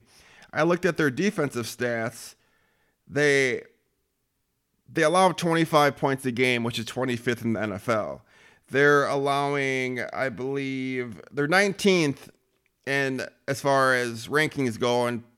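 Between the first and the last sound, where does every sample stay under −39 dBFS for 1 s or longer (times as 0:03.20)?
0:03.65–0:04.96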